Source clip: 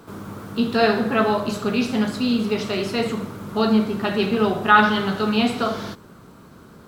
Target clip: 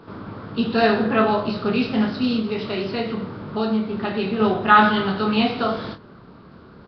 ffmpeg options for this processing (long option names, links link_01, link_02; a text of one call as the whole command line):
ffmpeg -i in.wav -filter_complex "[0:a]asplit=2[link_01][link_02];[link_02]adelay=27,volume=-6.5dB[link_03];[link_01][link_03]amix=inputs=2:normalize=0,asettb=1/sr,asplit=3[link_04][link_05][link_06];[link_04]atrim=end=2.394[link_07];[link_05]atrim=start=2.39:end=4.4,asetpts=PTS-STARTPTS,afade=type=in:duration=0.004:curve=qsin,afade=type=out:start_time=2.006:duration=0.004:curve=qsin,acompressor=threshold=-23dB:ratio=2[link_08];[link_06]atrim=start=4.396[link_09];[link_07][link_08]acrossfade=duration=0.004:curve1=hsin:curve2=qsin[link_10];[link_10][link_09]acrossfade=duration=0.004:curve1=qsin:curve2=hsin" -ar 11025 -c:a nellymoser out.flv